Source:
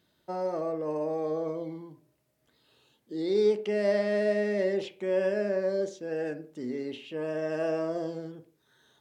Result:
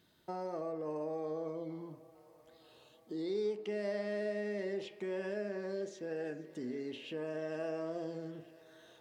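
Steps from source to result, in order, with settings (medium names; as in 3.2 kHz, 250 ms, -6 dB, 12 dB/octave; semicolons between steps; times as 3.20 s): band-stop 570 Hz, Q 12; compression 2:1, threshold -44 dBFS, peak gain reduction 13 dB; thinning echo 465 ms, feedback 84%, high-pass 360 Hz, level -20 dB; trim +1 dB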